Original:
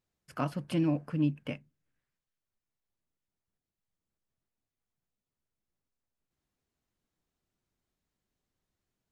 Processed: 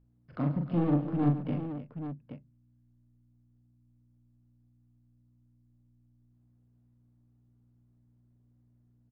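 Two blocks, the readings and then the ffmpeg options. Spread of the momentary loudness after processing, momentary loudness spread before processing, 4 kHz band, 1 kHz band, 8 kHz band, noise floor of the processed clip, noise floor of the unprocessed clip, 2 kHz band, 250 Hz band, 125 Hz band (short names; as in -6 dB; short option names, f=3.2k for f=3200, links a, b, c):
19 LU, 14 LU, under -10 dB, +1.5 dB, n/a, -67 dBFS, under -85 dBFS, -5.5 dB, +2.5 dB, +4.5 dB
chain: -filter_complex "[0:a]bass=f=250:g=-1,treble=f=4k:g=7,acrossover=split=380[a][b];[b]acompressor=threshold=-54dB:ratio=2[c];[a][c]amix=inputs=2:normalize=0,volume=30dB,asoftclip=hard,volume=-30dB,adynamicsmooth=sensitivity=4.5:basefreq=940,aeval=exprs='val(0)+0.000316*(sin(2*PI*60*n/s)+sin(2*PI*2*60*n/s)/2+sin(2*PI*3*60*n/s)/3+sin(2*PI*4*60*n/s)/4+sin(2*PI*5*60*n/s)/5)':c=same,asplit=2[d][e];[e]aecho=0:1:41|113|140|263|309|825:0.668|0.141|0.211|0.106|0.237|0.335[f];[d][f]amix=inputs=2:normalize=0,aresample=11025,aresample=44100,volume=5.5dB"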